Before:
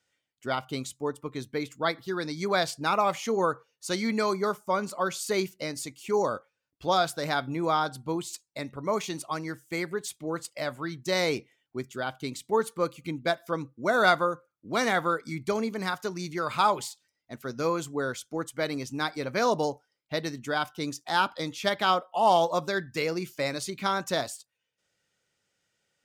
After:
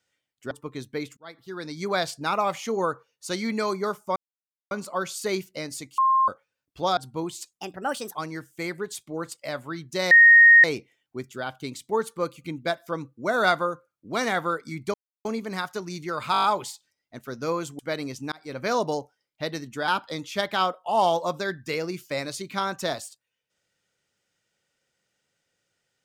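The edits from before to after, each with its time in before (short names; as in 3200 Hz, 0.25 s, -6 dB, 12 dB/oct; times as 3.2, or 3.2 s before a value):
0.51–1.11 cut
1.77–2.43 fade in linear
4.76 insert silence 0.55 s
6.03–6.33 bleep 1060 Hz -16.5 dBFS
7.02–7.89 cut
8.45–9.28 speed 134%
11.24 add tone 1860 Hz -9 dBFS 0.53 s
15.54 insert silence 0.31 s
16.61 stutter 0.02 s, 7 plays
17.96–18.5 cut
19.03–19.3 fade in
20.59–21.16 cut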